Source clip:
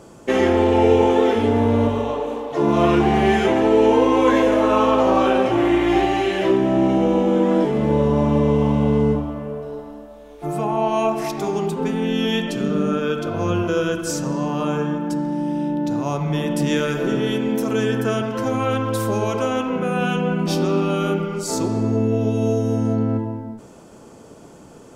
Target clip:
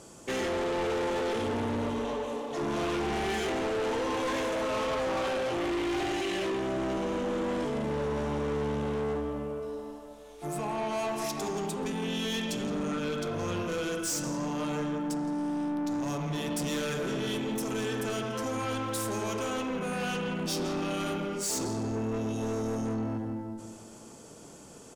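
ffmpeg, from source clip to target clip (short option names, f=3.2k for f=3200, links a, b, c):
-filter_complex "[0:a]lowpass=9.6k,asplit=2[a][b];[b]adelay=167,lowpass=f=2k:p=1,volume=-8dB,asplit=2[c][d];[d]adelay=167,lowpass=f=2k:p=1,volume=0.48,asplit=2[e][f];[f]adelay=167,lowpass=f=2k:p=1,volume=0.48,asplit=2[g][h];[h]adelay=167,lowpass=f=2k:p=1,volume=0.48,asplit=2[i][j];[j]adelay=167,lowpass=f=2k:p=1,volume=0.48,asplit=2[k][l];[l]adelay=167,lowpass=f=2k:p=1,volume=0.48[m];[c][e][g][i][k][m]amix=inputs=6:normalize=0[n];[a][n]amix=inputs=2:normalize=0,crystalizer=i=3.5:c=0,asoftclip=type=tanh:threshold=-20dB,volume=-8dB"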